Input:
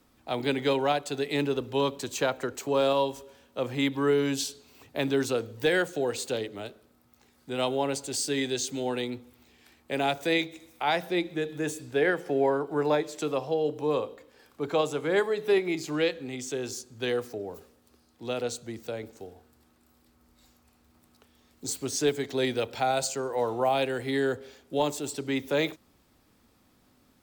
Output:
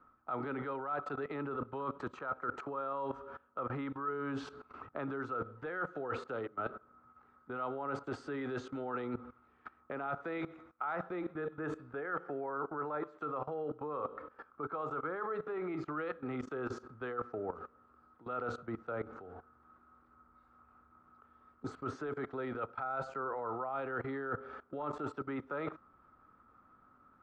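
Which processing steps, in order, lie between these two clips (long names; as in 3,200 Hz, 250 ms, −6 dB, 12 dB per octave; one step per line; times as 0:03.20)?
output level in coarse steps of 19 dB
low-pass with resonance 1,300 Hz, resonance Q 13
reversed playback
downward compressor 5 to 1, threshold −42 dBFS, peak gain reduction 15.5 dB
reversed playback
level +6 dB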